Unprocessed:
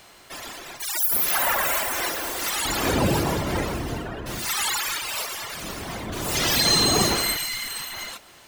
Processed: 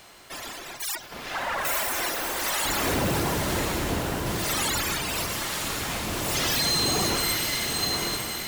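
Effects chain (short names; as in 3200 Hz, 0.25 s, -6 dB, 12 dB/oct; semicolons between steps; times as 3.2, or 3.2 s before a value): soft clip -21 dBFS, distortion -11 dB; 0.95–1.65 air absorption 180 m; on a send: diffused feedback echo 0.99 s, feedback 41%, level -4.5 dB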